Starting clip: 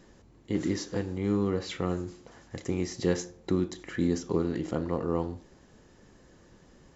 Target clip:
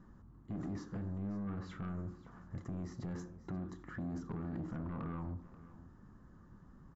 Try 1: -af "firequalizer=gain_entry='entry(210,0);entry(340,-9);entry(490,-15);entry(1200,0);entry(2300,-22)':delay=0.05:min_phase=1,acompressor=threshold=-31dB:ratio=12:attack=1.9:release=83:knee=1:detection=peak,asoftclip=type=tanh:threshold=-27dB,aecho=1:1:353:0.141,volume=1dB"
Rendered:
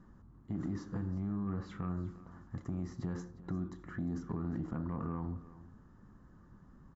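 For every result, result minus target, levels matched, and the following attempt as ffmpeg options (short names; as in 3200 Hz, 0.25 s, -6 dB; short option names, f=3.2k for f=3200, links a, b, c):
soft clip: distortion -13 dB; echo 0.18 s early
-af "firequalizer=gain_entry='entry(210,0);entry(340,-9);entry(490,-15);entry(1200,0);entry(2300,-22)':delay=0.05:min_phase=1,acompressor=threshold=-31dB:ratio=12:attack=1.9:release=83:knee=1:detection=peak,asoftclip=type=tanh:threshold=-36.5dB,aecho=1:1:353:0.141,volume=1dB"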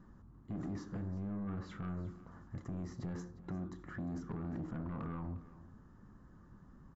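echo 0.18 s early
-af "firequalizer=gain_entry='entry(210,0);entry(340,-9);entry(490,-15);entry(1200,0);entry(2300,-22)':delay=0.05:min_phase=1,acompressor=threshold=-31dB:ratio=12:attack=1.9:release=83:knee=1:detection=peak,asoftclip=type=tanh:threshold=-36.5dB,aecho=1:1:533:0.141,volume=1dB"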